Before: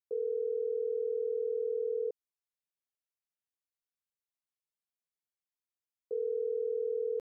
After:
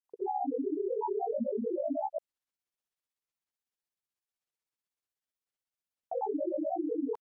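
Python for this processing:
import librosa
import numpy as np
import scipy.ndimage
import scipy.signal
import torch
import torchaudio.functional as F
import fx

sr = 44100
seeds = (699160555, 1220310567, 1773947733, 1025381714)

y = fx.granulator(x, sr, seeds[0], grain_ms=100.0, per_s=16.0, spray_ms=100.0, spread_st=12)
y = F.gain(torch.from_numpy(y), 2.5).numpy()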